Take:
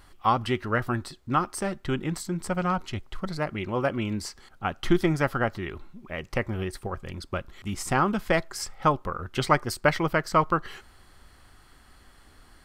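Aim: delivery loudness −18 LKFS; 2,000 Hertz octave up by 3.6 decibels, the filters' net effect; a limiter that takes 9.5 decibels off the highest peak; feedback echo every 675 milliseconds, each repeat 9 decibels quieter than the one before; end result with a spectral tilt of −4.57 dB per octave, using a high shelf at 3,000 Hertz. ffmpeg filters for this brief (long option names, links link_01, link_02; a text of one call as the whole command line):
ffmpeg -i in.wav -af "equalizer=frequency=2000:width_type=o:gain=3.5,highshelf=frequency=3000:gain=3.5,alimiter=limit=-13.5dB:level=0:latency=1,aecho=1:1:675|1350|2025|2700:0.355|0.124|0.0435|0.0152,volume=10.5dB" out.wav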